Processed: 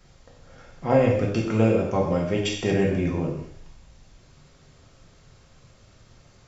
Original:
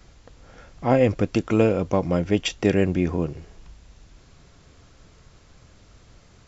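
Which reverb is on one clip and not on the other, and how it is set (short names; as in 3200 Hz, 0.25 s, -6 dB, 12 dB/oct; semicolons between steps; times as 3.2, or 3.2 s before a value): non-linear reverb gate 0.26 s falling, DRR -2.5 dB; gain -5.5 dB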